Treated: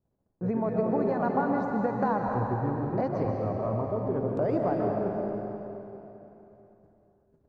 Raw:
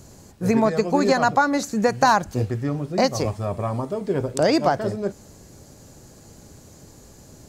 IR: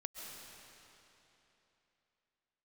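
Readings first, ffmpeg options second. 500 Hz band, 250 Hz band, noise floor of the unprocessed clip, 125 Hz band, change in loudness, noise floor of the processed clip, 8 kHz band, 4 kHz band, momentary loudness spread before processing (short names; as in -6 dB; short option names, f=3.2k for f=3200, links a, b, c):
-5.5 dB, -5.5 dB, -48 dBFS, -4.5 dB, -7.0 dB, -75 dBFS, under -35 dB, under -30 dB, 9 LU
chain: -filter_complex "[0:a]agate=range=-29dB:threshold=-42dB:ratio=16:detection=peak,lowpass=1.1k,bandreject=f=50:t=h:w=6,bandreject=f=100:t=h:w=6,bandreject=f=150:t=h:w=6,acompressor=threshold=-22dB:ratio=3[a];[1:a]atrim=start_sample=2205[b];[a][b]afir=irnorm=-1:irlink=0"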